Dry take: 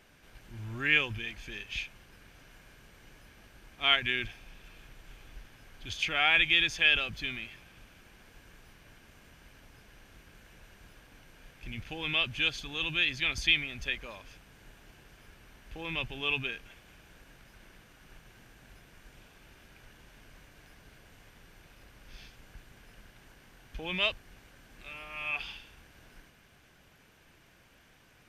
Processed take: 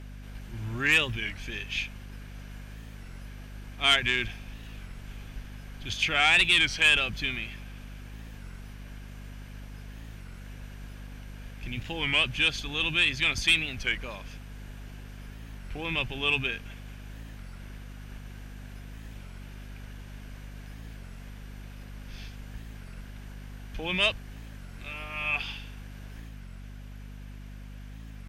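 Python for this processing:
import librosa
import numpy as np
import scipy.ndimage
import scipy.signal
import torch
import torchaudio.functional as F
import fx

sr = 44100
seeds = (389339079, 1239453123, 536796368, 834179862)

y = fx.cheby_harmonics(x, sr, harmonics=(5,), levels_db=(-16,), full_scale_db=-9.0)
y = fx.add_hum(y, sr, base_hz=50, snr_db=10)
y = fx.record_warp(y, sr, rpm=33.33, depth_cents=160.0)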